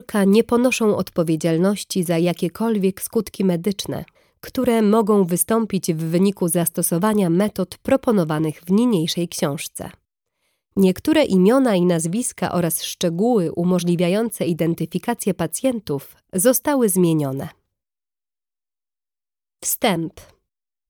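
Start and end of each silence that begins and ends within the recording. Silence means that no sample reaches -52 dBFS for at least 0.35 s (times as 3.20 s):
9.95–10.76 s
17.55–19.62 s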